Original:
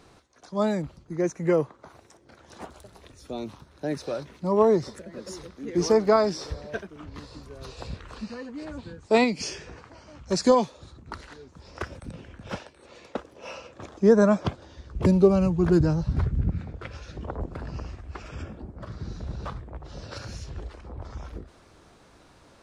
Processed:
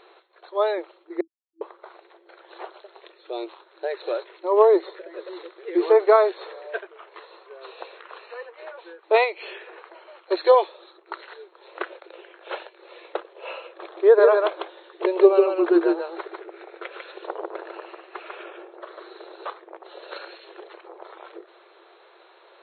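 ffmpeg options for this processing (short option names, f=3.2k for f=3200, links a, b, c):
-filter_complex "[0:a]asettb=1/sr,asplit=3[a][b][c];[a]atrim=end=6.314[d];[b]atrim=start=6.31:end=9.73,asetpts=PTS-STARTPTS,afade=t=in:d=0.004:c=qsin,afade=t=out:st=3.416:d=0.004:c=qsin,highpass=420,lowpass=3.4k[e];[c]atrim=start=9.726[f];[d][e]acrossfade=d=0.004:c1=hsin:c2=qsin[g];[g][f]acrossfade=d=0.004:c1=qsin:c2=hsin,asettb=1/sr,asplit=3[h][i][j];[h]atrim=end=13.824[k];[i]atrim=start=13.82:end=19.27,asetpts=PTS-STARTPTS,afade=t=in:d=0.004:c=qsin,afade=t=out:st=5.446:d=0.004:c=qsin,aecho=1:1:148:0.631,atrim=end_sample=240345[l];[j]atrim=start=19.266[m];[k][l]acrossfade=d=0.004:c1=hsin:c2=qsin[n];[n][m]acrossfade=d=0.004:c1=qsin:c2=hsin,asplit=3[o][p][q];[o]atrim=end=1.21,asetpts=PTS-STARTPTS,afade=t=out:st=1.206:d=0.004:c=hsin[r];[p]atrim=start=1.21:end=1.61,asetpts=PTS-STARTPTS,volume=0[s];[q]atrim=start=1.61,asetpts=PTS-STARTPTS,afade=t=in:d=0.004:c=hsin[t];[r][s][t]concat=n=3:v=0:a=1,afftfilt=real='re*between(b*sr/4096,330,4300)':imag='im*between(b*sr/4096,330,4300)':win_size=4096:overlap=0.75,volume=4.5dB"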